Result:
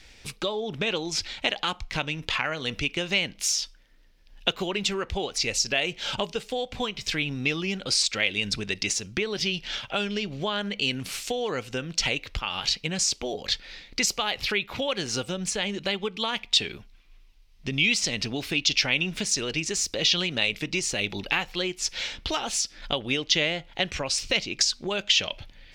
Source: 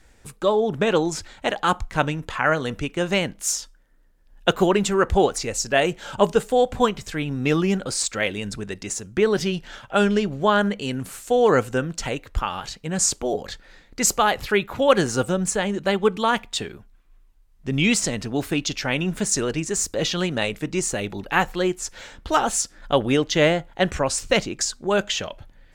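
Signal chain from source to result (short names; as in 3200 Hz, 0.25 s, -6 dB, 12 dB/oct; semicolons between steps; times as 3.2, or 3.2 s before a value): compressor 4:1, threshold -29 dBFS, peak gain reduction 16 dB; band shelf 3500 Hz +12.5 dB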